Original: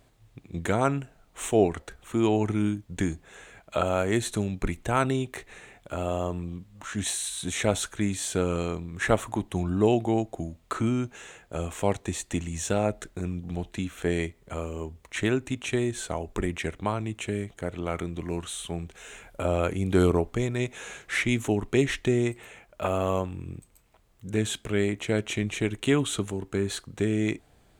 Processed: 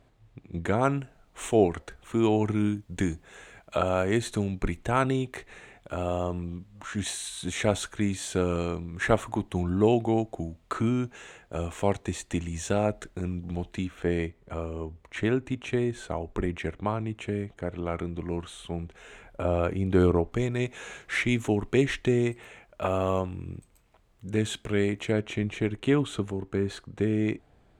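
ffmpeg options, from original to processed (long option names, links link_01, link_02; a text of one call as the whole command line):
ffmpeg -i in.wav -af "asetnsamples=nb_out_samples=441:pad=0,asendcmd='0.83 lowpass f 5900;2.72 lowpass f 9700;3.77 lowpass f 5000;13.87 lowpass f 2000;20.32 lowpass f 5000;25.12 lowpass f 1900',lowpass=frequency=2500:poles=1" out.wav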